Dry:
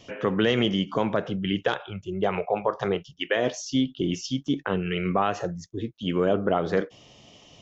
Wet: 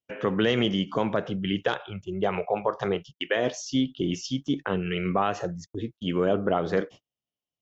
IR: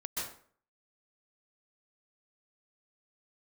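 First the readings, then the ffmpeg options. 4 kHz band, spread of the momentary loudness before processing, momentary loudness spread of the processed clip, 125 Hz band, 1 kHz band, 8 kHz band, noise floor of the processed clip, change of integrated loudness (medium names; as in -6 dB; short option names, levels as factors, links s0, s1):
-1.0 dB, 8 LU, 8 LU, -1.0 dB, -1.0 dB, no reading, under -85 dBFS, -1.0 dB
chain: -af "agate=range=0.00708:threshold=0.01:ratio=16:detection=peak,volume=0.891"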